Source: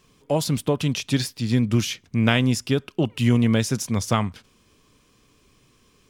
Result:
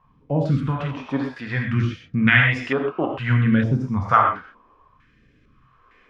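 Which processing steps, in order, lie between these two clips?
gated-style reverb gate 150 ms flat, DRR 1 dB; phase shifter stages 2, 0.61 Hz, lowest notch 100–1000 Hz; step-sequenced low-pass 2.2 Hz 930–1900 Hz; trim +1 dB

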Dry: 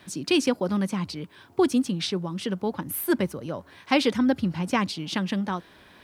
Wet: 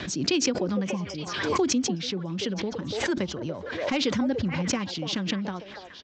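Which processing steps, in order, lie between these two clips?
spectral replace 0.87–1.18 s, 1.2–5 kHz after; in parallel at 0 dB: compression, threshold -26 dBFS, peak gain reduction 10.5 dB; on the sum: overload inside the chain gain 8.5 dB; rotary cabinet horn 8 Hz; on a send: repeats whose band climbs or falls 289 ms, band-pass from 590 Hz, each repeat 1.4 oct, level -4 dB; on the sum: resampled via 16 kHz; swell ahead of each attack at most 41 dB/s; trim -6 dB

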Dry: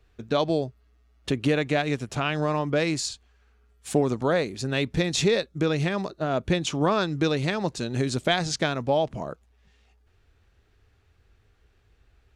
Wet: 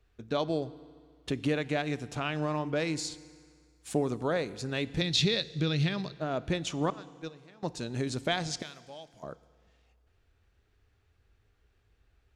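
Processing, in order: 5.01–6.15 s: ten-band graphic EQ 125 Hz +8 dB, 500 Hz -4 dB, 1 kHz -4 dB, 4 kHz +11 dB, 8 kHz -6 dB; 6.90–7.63 s: gate -19 dBFS, range -23 dB; 8.62–9.23 s: pre-emphasis filter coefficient 0.9; FDN reverb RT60 1.9 s, low-frequency decay 0.95×, high-frequency decay 0.95×, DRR 16.5 dB; trim -6.5 dB

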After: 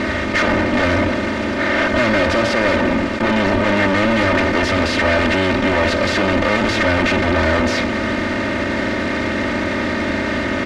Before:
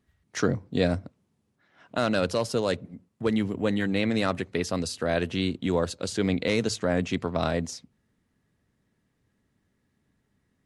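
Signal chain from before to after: spectral levelling over time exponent 0.4; fuzz box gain 39 dB, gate -45 dBFS; low-pass 3.2 kHz 12 dB/octave; peaking EQ 1.9 kHz +5.5 dB 0.53 oct; comb 3.3 ms, depth 87%; trim -3.5 dB

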